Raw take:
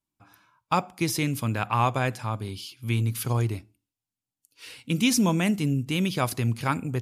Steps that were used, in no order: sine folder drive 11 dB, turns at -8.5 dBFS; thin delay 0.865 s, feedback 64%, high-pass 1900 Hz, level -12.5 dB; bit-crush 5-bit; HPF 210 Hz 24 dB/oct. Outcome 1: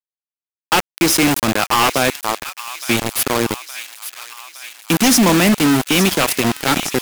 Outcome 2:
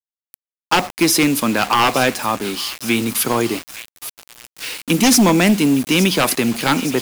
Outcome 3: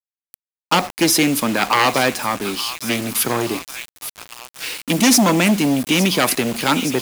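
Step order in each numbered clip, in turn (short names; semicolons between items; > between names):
HPF > bit-crush > thin delay > sine folder; HPF > sine folder > thin delay > bit-crush; thin delay > sine folder > HPF > bit-crush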